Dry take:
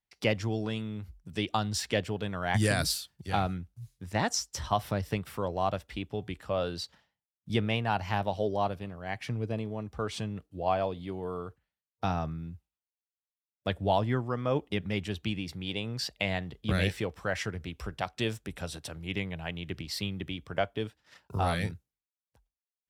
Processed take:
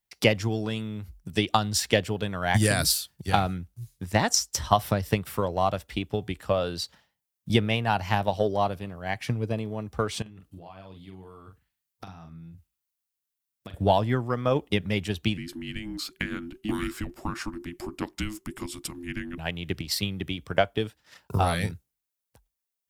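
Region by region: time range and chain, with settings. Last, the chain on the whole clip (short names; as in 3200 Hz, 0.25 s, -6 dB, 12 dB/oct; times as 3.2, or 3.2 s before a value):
10.22–13.74 bell 530 Hz -8.5 dB 1.1 oct + compressor 8:1, threshold -46 dBFS + doubler 42 ms -5.5 dB
15.37–19.38 bell 3900 Hz -4 dB 1.1 oct + compressor 1.5:1, threshold -40 dBFS + frequency shift -430 Hz
whole clip: high shelf 8400 Hz +9.5 dB; transient shaper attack +6 dB, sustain +1 dB; gain +2.5 dB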